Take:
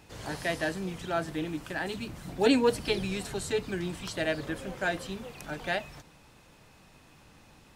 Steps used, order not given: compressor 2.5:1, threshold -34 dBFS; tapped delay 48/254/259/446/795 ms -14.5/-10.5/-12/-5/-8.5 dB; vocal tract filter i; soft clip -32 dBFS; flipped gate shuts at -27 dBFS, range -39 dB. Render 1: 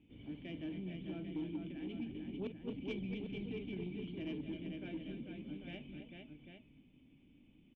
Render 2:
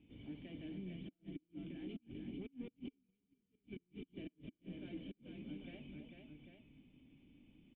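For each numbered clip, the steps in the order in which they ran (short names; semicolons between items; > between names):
vocal tract filter > compressor > flipped gate > tapped delay > soft clip; soft clip > compressor > tapped delay > flipped gate > vocal tract filter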